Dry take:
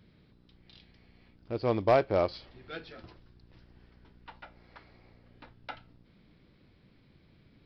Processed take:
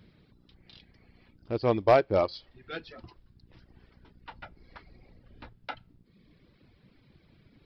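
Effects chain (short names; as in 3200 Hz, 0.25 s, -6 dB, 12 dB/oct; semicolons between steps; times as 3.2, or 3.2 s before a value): 4.32–5.57 octaver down 2 oct, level +3 dB; reverb removal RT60 1 s; gain +3.5 dB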